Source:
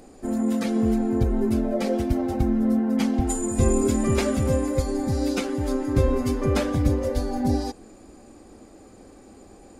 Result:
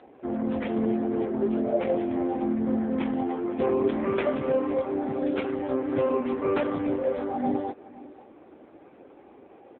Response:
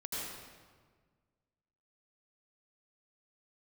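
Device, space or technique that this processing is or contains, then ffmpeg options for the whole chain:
satellite phone: -filter_complex "[0:a]asettb=1/sr,asplit=3[s0][s1][s2];[s0]atrim=end=1.104[s3];[s1]atrim=start=1.1:end=2.27,asetpts=PTS-STARTPTS,afade=t=in:d=0.004:c=qsin,afade=t=out:st=1.166:d=0.004:c=qsin,equalizer=f=7300:w=3.4:g=-2.5[s4];[s2]atrim=start=2.266[s5];[s3][s4]acrossfade=d=0.004:c1=hsin:c2=qsin[s6];[s6][s5]acrossfade=d=0.004:c1=qsin:c2=hsin,highpass=340,lowpass=3100,aecho=1:1:510:0.106,volume=1.41" -ar 8000 -c:a libopencore_amrnb -b:a 5900

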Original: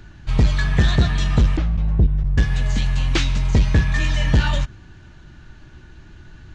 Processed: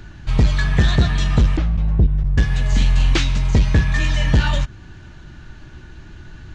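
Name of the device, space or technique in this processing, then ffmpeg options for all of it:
parallel compression: -filter_complex "[0:a]asplit=2[s0][s1];[s1]acompressor=threshold=0.0398:ratio=6,volume=0.631[s2];[s0][s2]amix=inputs=2:normalize=0,asettb=1/sr,asplit=3[s3][s4][s5];[s3]atrim=end=2.684[s6];[s4]atrim=start=2.68:end=3.14,asetpts=PTS-STARTPTS,afade=t=in:d=0.004:c=qsin,afade=t=out:st=0.456:d=0.004:c=qsin,asplit=2[s7][s8];[s8]adelay=43,volume=0.668[s9];[s7][s9]amix=inputs=2:normalize=0,atrim=end_sample=20286[s10];[s5]atrim=start=3.136[s11];[s6][s10]acrossfade=d=0.004:c1=hsin:c2=qsin[s12];[s12][s11]acrossfade=d=0.004:c1=qsin:c2=hsin"

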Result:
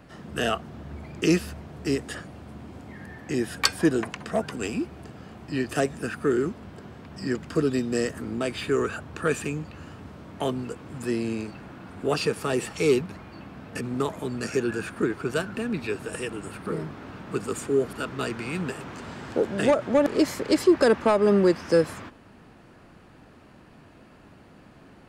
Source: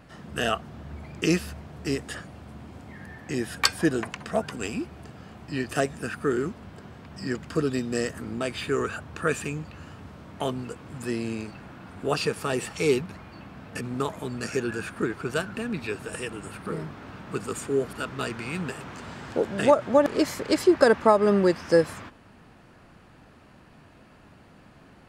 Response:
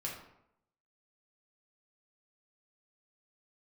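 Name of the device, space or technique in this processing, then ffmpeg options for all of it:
one-band saturation: -filter_complex "[0:a]acrossover=split=250|2400[s0][s1][s2];[s1]asoftclip=type=tanh:threshold=0.15[s3];[s0][s3][s2]amix=inputs=3:normalize=0,equalizer=f=340:w=1:g=3.5"

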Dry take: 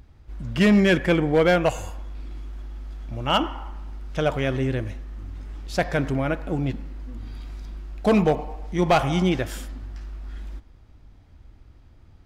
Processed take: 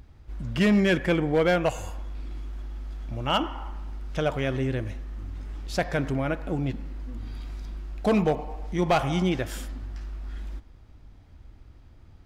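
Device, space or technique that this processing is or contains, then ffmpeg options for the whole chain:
parallel compression: -filter_complex "[0:a]asplit=2[s0][s1];[s1]acompressor=threshold=0.0316:ratio=6,volume=0.794[s2];[s0][s2]amix=inputs=2:normalize=0,volume=0.562"

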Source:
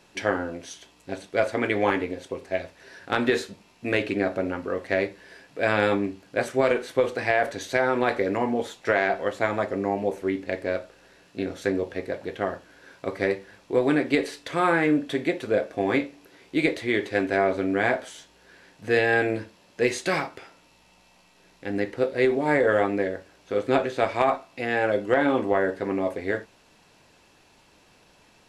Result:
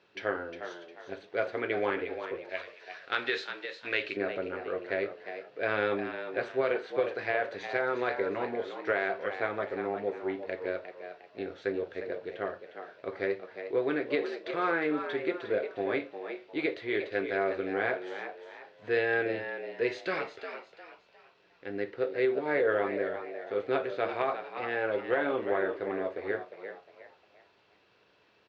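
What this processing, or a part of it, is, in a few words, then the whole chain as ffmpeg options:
frequency-shifting delay pedal into a guitar cabinet: -filter_complex "[0:a]asplit=5[s0][s1][s2][s3][s4];[s1]adelay=356,afreqshift=80,volume=0.355[s5];[s2]adelay=712,afreqshift=160,volume=0.124[s6];[s3]adelay=1068,afreqshift=240,volume=0.0437[s7];[s4]adelay=1424,afreqshift=320,volume=0.0151[s8];[s0][s5][s6][s7][s8]amix=inputs=5:normalize=0,highpass=110,equalizer=f=160:t=q:w=4:g=-8,equalizer=f=250:t=q:w=4:g=-8,equalizer=f=420:t=q:w=4:g=5,equalizer=f=850:t=q:w=4:g=-4,equalizer=f=1400:t=q:w=4:g=4,lowpass=f=4400:w=0.5412,lowpass=f=4400:w=1.3066,asettb=1/sr,asplit=3[s9][s10][s11];[s9]atrim=end=2.494[s12];[s10]atrim=start=2.49:end=4.17,asetpts=PTS-STARTPTS,afade=t=in:d=0.004:c=qsin,afade=t=out:st=1.676:d=0.004:c=qsin,tiltshelf=f=1100:g=-8[s13];[s11]atrim=start=4.166[s14];[s12][s13]acrossfade=d=0.004:c1=hsin:c2=qsin[s15];[s15][s14]acrossfade=d=0.004:c1=qsin:c2=hsin,volume=0.398"

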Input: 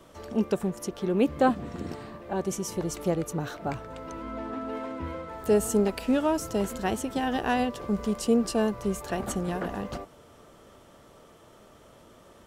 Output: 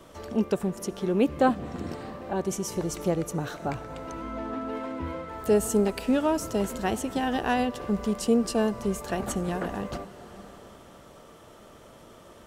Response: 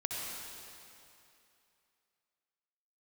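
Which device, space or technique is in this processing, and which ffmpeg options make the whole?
ducked reverb: -filter_complex "[0:a]asplit=3[s0][s1][s2];[1:a]atrim=start_sample=2205[s3];[s1][s3]afir=irnorm=-1:irlink=0[s4];[s2]apad=whole_len=549746[s5];[s4][s5]sidechaincompress=threshold=0.00794:ratio=3:attack=16:release=510,volume=0.447[s6];[s0][s6]amix=inputs=2:normalize=0"

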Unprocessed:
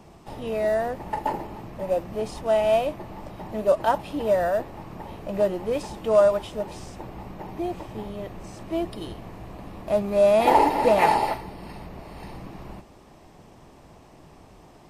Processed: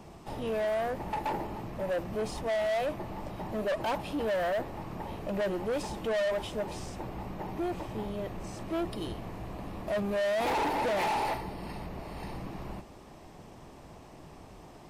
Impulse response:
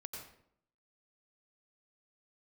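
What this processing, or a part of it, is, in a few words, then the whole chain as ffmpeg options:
saturation between pre-emphasis and de-emphasis: -af "highshelf=f=6300:g=8.5,asoftclip=type=tanh:threshold=0.0447,highshelf=f=6300:g=-8.5"

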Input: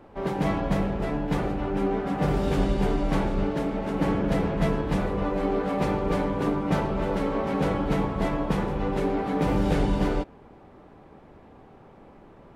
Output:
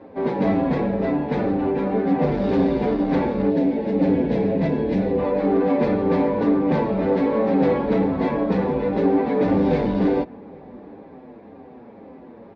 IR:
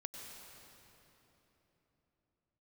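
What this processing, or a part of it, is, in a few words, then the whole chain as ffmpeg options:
barber-pole flanger into a guitar amplifier: -filter_complex "[0:a]asettb=1/sr,asplit=3[s0][s1][s2];[s0]atrim=end=3.494[s3];[s1]atrim=start=3.49:end=5.19,asetpts=PTS-STARTPTS,afade=t=in:d=0.004:c=qsin,afade=t=out:st=1.696:d=0.004:c=qsin,equalizer=f=1200:t=o:w=0.71:g=-12.5[s4];[s2]atrim=start=5.186[s5];[s3][s4]acrossfade=d=0.004:c1=hsin:c2=qsin[s6];[s6][s5]acrossfade=d=0.004:c1=qsin:c2=hsin,asplit=2[s7][s8];[s8]adelay=7,afreqshift=-2[s9];[s7][s9]amix=inputs=2:normalize=1,asoftclip=type=tanh:threshold=0.0794,highpass=98,equalizer=f=130:t=q:w=4:g=-9,equalizer=f=250:t=q:w=4:g=9,equalizer=f=490:t=q:w=4:g=6,equalizer=f=1300:t=q:w=4:g=-8,equalizer=f=3000:t=q:w=4:g=-9,lowpass=f=4200:w=0.5412,lowpass=f=4200:w=1.3066,asplit=2[s10][s11];[s11]adelay=816.3,volume=0.0562,highshelf=f=4000:g=-18.4[s12];[s10][s12]amix=inputs=2:normalize=0,volume=2.66"

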